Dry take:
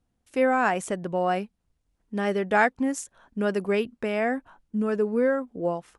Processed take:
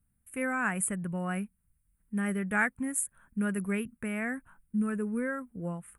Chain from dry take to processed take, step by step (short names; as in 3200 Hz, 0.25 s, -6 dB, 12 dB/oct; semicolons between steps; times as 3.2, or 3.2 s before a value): EQ curve 190 Hz 0 dB, 300 Hz -12 dB, 740 Hz -17 dB, 1400 Hz -4 dB, 2300 Hz -5 dB, 5100 Hz -29 dB, 9100 Hz +10 dB; gain +1 dB